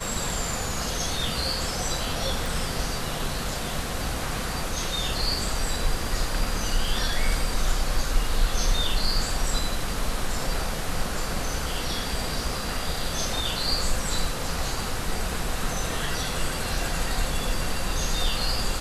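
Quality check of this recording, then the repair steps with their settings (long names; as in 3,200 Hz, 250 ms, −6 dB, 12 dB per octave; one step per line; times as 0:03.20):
0:02.46: click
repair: click removal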